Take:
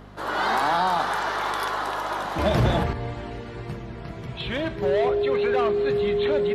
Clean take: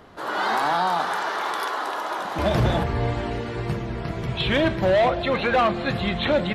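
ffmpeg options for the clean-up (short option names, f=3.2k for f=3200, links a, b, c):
-af "bandreject=f=50.7:t=h:w=4,bandreject=f=101.4:t=h:w=4,bandreject=f=152.1:t=h:w=4,bandreject=f=202.8:t=h:w=4,bandreject=f=253.5:t=h:w=4,bandreject=f=410:w=30,asetnsamples=n=441:p=0,asendcmd='2.93 volume volume 7dB',volume=0dB"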